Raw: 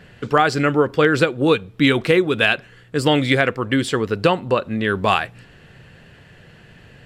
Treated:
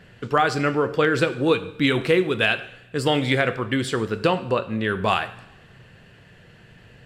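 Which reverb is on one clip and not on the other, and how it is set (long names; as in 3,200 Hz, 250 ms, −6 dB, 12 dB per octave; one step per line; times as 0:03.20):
coupled-rooms reverb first 0.68 s, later 1.8 s, DRR 9.5 dB
level −4 dB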